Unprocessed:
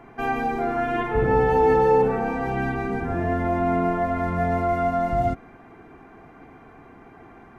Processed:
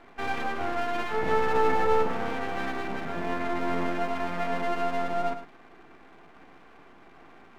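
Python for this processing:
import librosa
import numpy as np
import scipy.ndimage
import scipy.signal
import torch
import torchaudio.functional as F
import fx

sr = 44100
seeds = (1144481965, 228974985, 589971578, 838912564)

y = scipy.signal.sosfilt(scipy.signal.cheby1(4, 1.0, [160.0, 2400.0], 'bandpass', fs=sr, output='sos'), x)
y = fx.tilt_eq(y, sr, slope=1.5)
y = np.maximum(y, 0.0)
y = y + 10.0 ** (-10.5 / 20.0) * np.pad(y, (int(106 * sr / 1000.0), 0))[:len(y)]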